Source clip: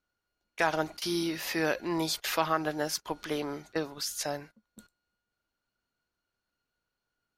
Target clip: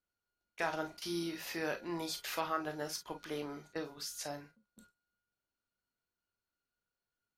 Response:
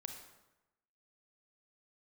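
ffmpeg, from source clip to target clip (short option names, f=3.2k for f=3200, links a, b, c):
-filter_complex "[1:a]atrim=start_sample=2205,atrim=end_sample=3969,asetrate=70560,aresample=44100[a];[0:a][a]afir=irnorm=-1:irlink=0"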